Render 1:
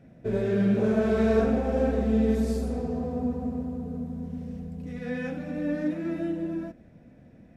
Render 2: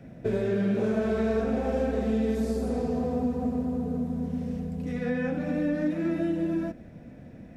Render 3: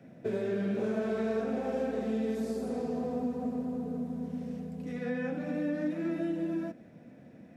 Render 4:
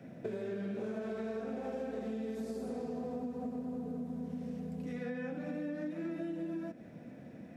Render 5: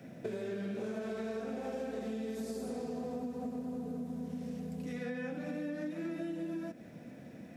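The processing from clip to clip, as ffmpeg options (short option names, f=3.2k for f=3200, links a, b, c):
-filter_complex "[0:a]acrossover=split=200|1900[a][b][c];[a]acompressor=threshold=-42dB:ratio=4[d];[b]acompressor=threshold=-33dB:ratio=4[e];[c]acompressor=threshold=-56dB:ratio=4[f];[d][e][f]amix=inputs=3:normalize=0,volume=6.5dB"
-af "highpass=160,volume=-4.5dB"
-af "acompressor=threshold=-40dB:ratio=4,volume=2.5dB"
-af "highshelf=f=3.1k:g=8.5"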